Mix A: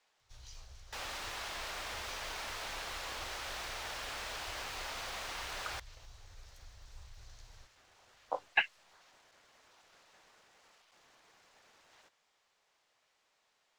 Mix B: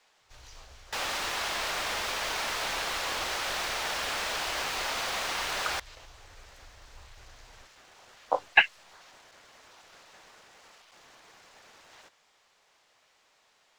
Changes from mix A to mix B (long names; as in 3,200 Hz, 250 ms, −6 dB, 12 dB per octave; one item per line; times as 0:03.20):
speech +9.5 dB
second sound +10.0 dB